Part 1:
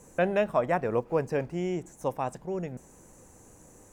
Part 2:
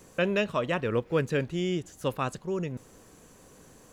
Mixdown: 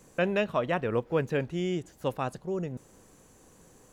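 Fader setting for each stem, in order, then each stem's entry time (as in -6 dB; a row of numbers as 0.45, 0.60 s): -7.5, -5.0 dB; 0.00, 0.00 s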